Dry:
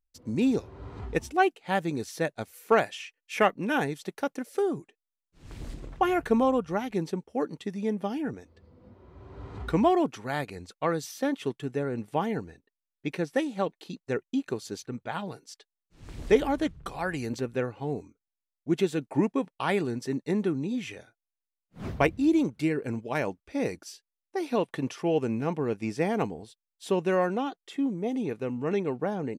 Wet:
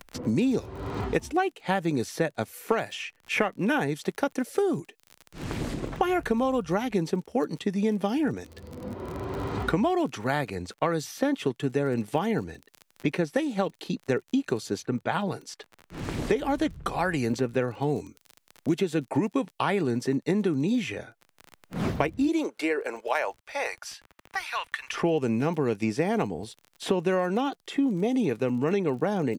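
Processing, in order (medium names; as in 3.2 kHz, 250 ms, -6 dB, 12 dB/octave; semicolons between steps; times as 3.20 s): 22.27–24.92 s: high-pass 350 Hz -> 1.5 kHz 24 dB/octave; compression, threshold -25 dBFS, peak gain reduction 10 dB; crackle 38 per s -47 dBFS; three bands compressed up and down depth 70%; trim +4.5 dB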